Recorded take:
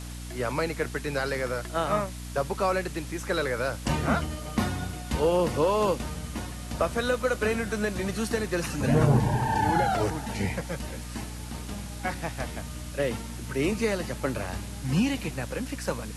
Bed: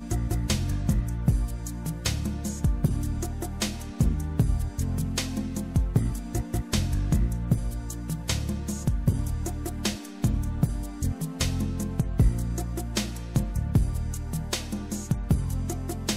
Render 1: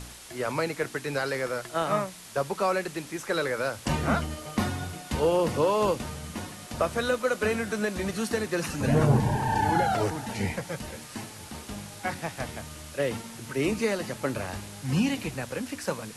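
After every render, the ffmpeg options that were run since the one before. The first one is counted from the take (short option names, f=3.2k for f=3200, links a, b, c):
-af "bandreject=f=60:t=h:w=4,bandreject=f=120:t=h:w=4,bandreject=f=180:t=h:w=4,bandreject=f=240:t=h:w=4,bandreject=f=300:t=h:w=4"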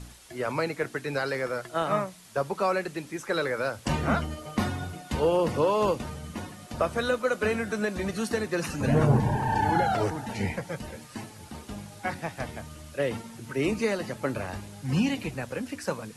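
-af "afftdn=nr=7:nf=-44"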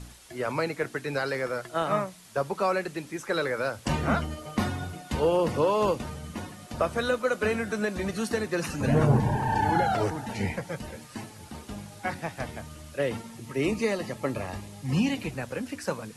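-filter_complex "[0:a]asettb=1/sr,asplit=3[a][b][c];[a]atrim=end=13.344[d];[b]atrim=start=13.34:end=15.13,asetpts=PTS-STARTPTS,afade=t=in:d=0.004:c=qsin,afade=t=out:st=1.786:d=0.004:c=qsin,asuperstop=centerf=1500:order=4:qfactor=6.9[e];[c]atrim=start=15.126[f];[d][e]acrossfade=d=0.004:c1=hsin:c2=qsin[g];[g][f]acrossfade=d=0.004:c1=qsin:c2=hsin"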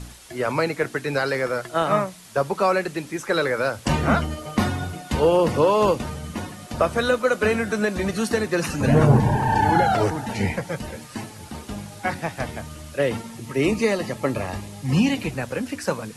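-af "volume=6dB"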